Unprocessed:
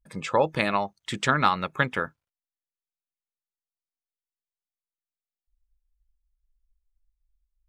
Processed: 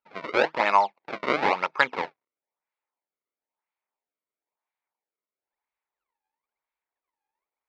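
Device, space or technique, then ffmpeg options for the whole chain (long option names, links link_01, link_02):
circuit-bent sampling toy: -af "acrusher=samples=30:mix=1:aa=0.000001:lfo=1:lforange=48:lforate=1,highpass=480,equalizer=frequency=910:width_type=q:width=4:gain=9,equalizer=frequency=2200:width_type=q:width=4:gain=7,equalizer=frequency=3100:width_type=q:width=4:gain=-5,lowpass=frequency=4000:width=0.5412,lowpass=frequency=4000:width=1.3066,volume=2.5dB"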